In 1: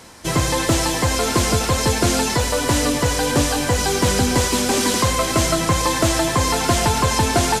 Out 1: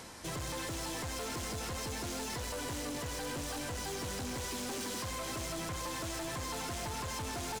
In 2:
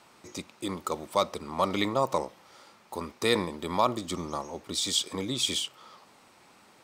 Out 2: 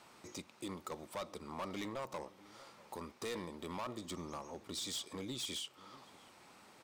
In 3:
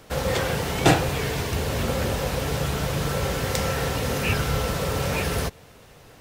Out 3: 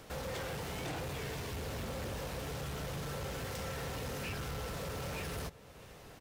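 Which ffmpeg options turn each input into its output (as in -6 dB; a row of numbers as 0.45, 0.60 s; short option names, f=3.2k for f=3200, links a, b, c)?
-filter_complex "[0:a]alimiter=limit=-11.5dB:level=0:latency=1,acompressor=threshold=-49dB:ratio=1.5,asoftclip=type=hard:threshold=-33.5dB,asplit=2[a][b];[b]adelay=641.4,volume=-19dB,highshelf=f=4k:g=-14.4[c];[a][c]amix=inputs=2:normalize=0,volume=-3dB"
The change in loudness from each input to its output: -20.0, -14.0, -15.5 LU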